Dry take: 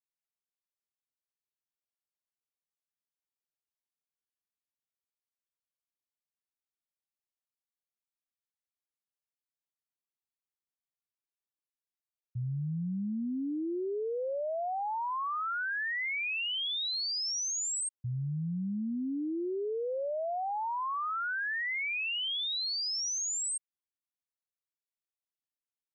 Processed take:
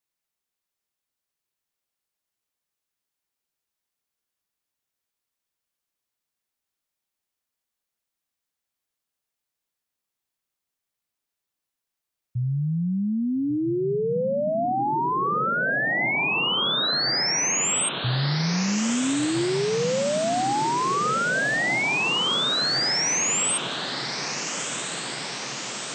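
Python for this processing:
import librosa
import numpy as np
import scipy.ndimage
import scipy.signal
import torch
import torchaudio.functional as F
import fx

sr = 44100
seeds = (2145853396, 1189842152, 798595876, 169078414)

y = fx.echo_diffused(x, sr, ms=1357, feedback_pct=72, wet_db=-8.5)
y = y * librosa.db_to_amplitude(9.0)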